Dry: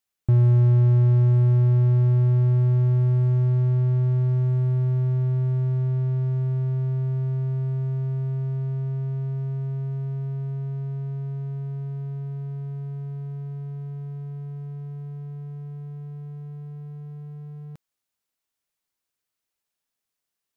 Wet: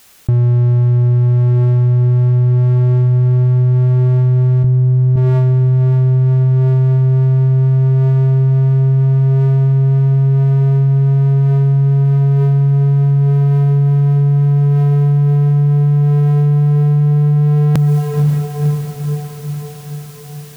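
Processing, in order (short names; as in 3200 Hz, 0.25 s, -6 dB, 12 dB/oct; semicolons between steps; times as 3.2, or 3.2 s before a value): vocal rider within 3 dB; 4.64–5.16 low shelf 420 Hz +11 dB; diffused feedback echo 0.518 s, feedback 63%, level -15.5 dB; fast leveller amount 100%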